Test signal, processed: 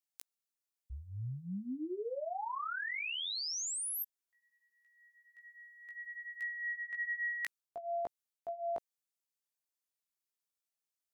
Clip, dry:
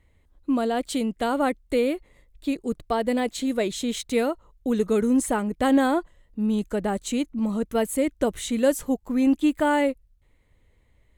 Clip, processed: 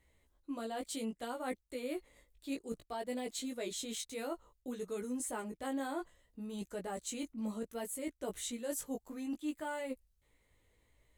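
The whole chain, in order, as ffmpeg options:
-af "bass=f=250:g=-6,treble=f=4k:g=7,areverse,acompressor=threshold=-32dB:ratio=6,areverse,flanger=delay=15.5:depth=3:speed=0.61,volume=-2.5dB"

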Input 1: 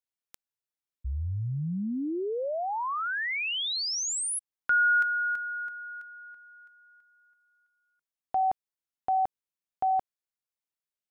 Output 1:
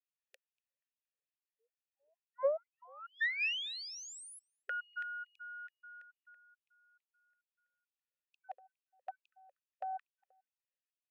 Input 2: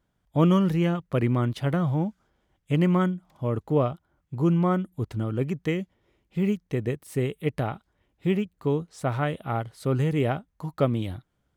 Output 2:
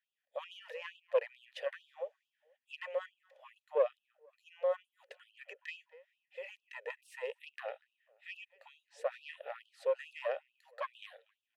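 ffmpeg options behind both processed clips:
-filter_complex "[0:a]highshelf=f=4.9k:g=8,asplit=2[a][b];[b]acompressor=threshold=-33dB:ratio=6:attack=47:release=37,volume=1dB[c];[a][c]amix=inputs=2:normalize=0,asplit=3[d][e][f];[d]bandpass=f=530:t=q:w=8,volume=0dB[g];[e]bandpass=f=1.84k:t=q:w=8,volume=-6dB[h];[f]bandpass=f=2.48k:t=q:w=8,volume=-9dB[i];[g][h][i]amix=inputs=3:normalize=0,aeval=exprs='(tanh(10*val(0)+0.5)-tanh(0.5))/10':c=same,asplit=2[j][k];[k]adelay=240,lowpass=f=2.3k:p=1,volume=-22dB,asplit=2[l][m];[m]adelay=240,lowpass=f=2.3k:p=1,volume=0.34[n];[j][l][n]amix=inputs=3:normalize=0,afftfilt=real='re*gte(b*sr/1024,410*pow(2600/410,0.5+0.5*sin(2*PI*2.3*pts/sr)))':imag='im*gte(b*sr/1024,410*pow(2600/410,0.5+0.5*sin(2*PI*2.3*pts/sr)))':win_size=1024:overlap=0.75,volume=2.5dB"

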